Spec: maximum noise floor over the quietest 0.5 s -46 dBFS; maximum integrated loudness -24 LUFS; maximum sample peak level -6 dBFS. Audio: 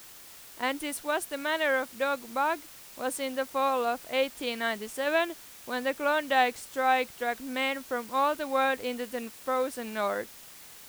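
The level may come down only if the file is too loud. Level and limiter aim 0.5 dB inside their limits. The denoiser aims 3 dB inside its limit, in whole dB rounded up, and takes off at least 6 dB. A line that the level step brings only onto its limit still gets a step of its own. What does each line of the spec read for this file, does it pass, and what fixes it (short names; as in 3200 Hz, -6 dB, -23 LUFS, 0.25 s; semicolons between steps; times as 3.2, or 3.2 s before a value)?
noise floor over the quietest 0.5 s -49 dBFS: OK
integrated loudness -29.5 LUFS: OK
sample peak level -12.0 dBFS: OK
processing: none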